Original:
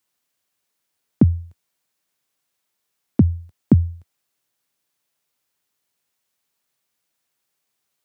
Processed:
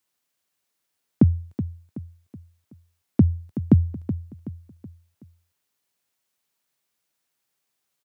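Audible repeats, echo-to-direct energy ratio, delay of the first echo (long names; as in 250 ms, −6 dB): 4, −11.0 dB, 375 ms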